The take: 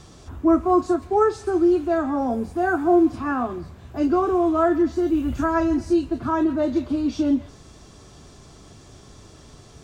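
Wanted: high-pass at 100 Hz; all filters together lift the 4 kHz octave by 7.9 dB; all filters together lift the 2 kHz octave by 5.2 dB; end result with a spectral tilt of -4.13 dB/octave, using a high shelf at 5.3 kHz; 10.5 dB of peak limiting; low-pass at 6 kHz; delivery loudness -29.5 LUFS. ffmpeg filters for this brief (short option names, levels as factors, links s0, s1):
-af "highpass=100,lowpass=6000,equalizer=f=2000:t=o:g=5.5,equalizer=f=4000:t=o:g=6,highshelf=f=5300:g=7.5,volume=0.596,alimiter=limit=0.0841:level=0:latency=1"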